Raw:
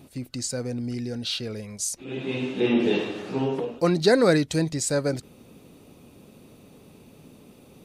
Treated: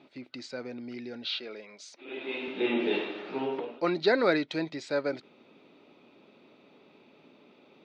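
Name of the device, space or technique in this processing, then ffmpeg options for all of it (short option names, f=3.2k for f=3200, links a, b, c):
phone earpiece: -filter_complex "[0:a]highpass=480,equalizer=f=490:t=q:w=4:g=-8,equalizer=f=740:t=q:w=4:g=-6,equalizer=f=1.1k:t=q:w=4:g=-6,equalizer=f=1.7k:t=q:w=4:g=-6,equalizer=f=2.9k:t=q:w=4:g=-6,lowpass=f=3.4k:w=0.5412,lowpass=f=3.4k:w=1.3066,asettb=1/sr,asplit=3[a][b][c];[a]atrim=end=1.274[d];[b]atrim=start=1.27:end=2.48,asetpts=PTS-STARTPTS,afade=t=in:d=0.004:c=qsin,afade=t=out:st=1.206:d=0.004:c=qsin,highpass=270[e];[c]atrim=start=2.476[f];[d][e]acrossfade=d=0.004:c1=hsin:c2=qsin[g];[g][f]acrossfade=d=0.004:c1=qsin:c2=hsin,volume=3dB"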